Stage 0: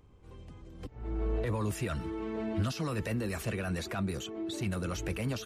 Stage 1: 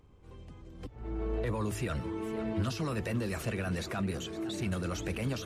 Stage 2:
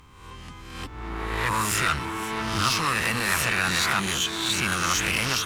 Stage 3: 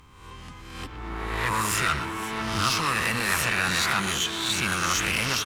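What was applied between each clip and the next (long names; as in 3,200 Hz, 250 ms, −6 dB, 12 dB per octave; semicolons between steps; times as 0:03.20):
high-shelf EQ 12,000 Hz −4 dB; hum removal 52.46 Hz, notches 2; feedback echo with a swinging delay time 509 ms, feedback 66%, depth 186 cents, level −14 dB
peak hold with a rise ahead of every peak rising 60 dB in 0.83 s; asymmetric clip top −38 dBFS; drawn EQ curve 250 Hz 0 dB, 610 Hz −4 dB, 1,000 Hz +12 dB; level +4 dB
far-end echo of a speakerphone 120 ms, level −9 dB; level −1 dB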